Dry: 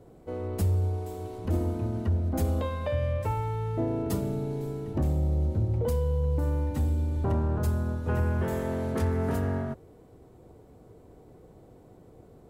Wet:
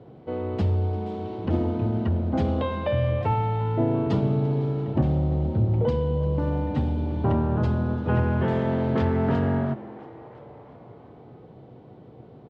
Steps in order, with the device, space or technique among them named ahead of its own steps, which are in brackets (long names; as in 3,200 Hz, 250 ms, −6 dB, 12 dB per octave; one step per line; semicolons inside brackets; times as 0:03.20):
frequency-shifting delay pedal into a guitar cabinet (echo with shifted repeats 343 ms, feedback 60%, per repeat +120 Hz, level −20 dB; loudspeaker in its box 100–4,100 Hz, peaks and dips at 130 Hz +8 dB, 230 Hz +3 dB, 840 Hz +3 dB, 3,100 Hz +4 dB)
level +4.5 dB